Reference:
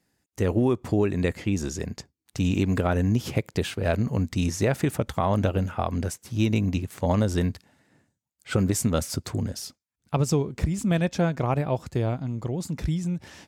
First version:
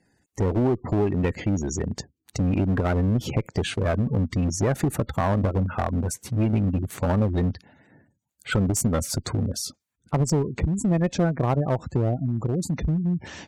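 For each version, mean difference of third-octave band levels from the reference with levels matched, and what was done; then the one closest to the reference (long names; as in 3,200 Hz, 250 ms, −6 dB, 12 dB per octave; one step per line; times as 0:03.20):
5.0 dB: notch filter 5,100 Hz, Q 13
gate on every frequency bin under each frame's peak −20 dB strong
in parallel at +2.5 dB: downward compressor 16 to 1, threshold −31 dBFS, peak gain reduction 14 dB
on the sum: asymmetric clip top −20.5 dBFS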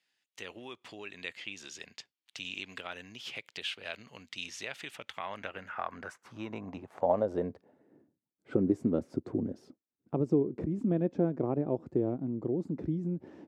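9.0 dB: high-pass filter 72 Hz
parametric band 5,300 Hz −3 dB 3 octaves
in parallel at +2.5 dB: downward compressor, threshold −32 dBFS, peak gain reduction 14 dB
on the sum: band-pass filter sweep 3,100 Hz → 330 Hz, 0:04.89–0:08.12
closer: first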